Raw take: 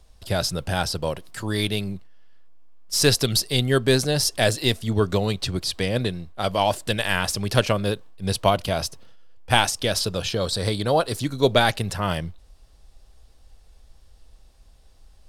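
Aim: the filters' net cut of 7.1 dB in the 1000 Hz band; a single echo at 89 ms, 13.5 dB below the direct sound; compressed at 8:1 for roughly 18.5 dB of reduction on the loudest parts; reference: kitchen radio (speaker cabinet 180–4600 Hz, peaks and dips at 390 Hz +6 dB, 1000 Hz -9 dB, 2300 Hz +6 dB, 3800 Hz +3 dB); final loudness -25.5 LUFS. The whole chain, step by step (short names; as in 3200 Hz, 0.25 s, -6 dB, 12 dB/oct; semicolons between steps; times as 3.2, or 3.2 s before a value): bell 1000 Hz -7.5 dB; compressor 8:1, threshold -34 dBFS; speaker cabinet 180–4600 Hz, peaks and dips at 390 Hz +6 dB, 1000 Hz -9 dB, 2300 Hz +6 dB, 3800 Hz +3 dB; echo 89 ms -13.5 dB; gain +12.5 dB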